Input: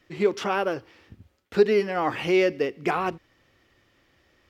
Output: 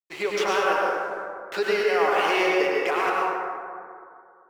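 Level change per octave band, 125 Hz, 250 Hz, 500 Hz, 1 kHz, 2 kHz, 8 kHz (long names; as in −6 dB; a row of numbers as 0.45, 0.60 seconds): below −10 dB, −3.5 dB, 0.0 dB, +5.5 dB, +6.5 dB, can't be measured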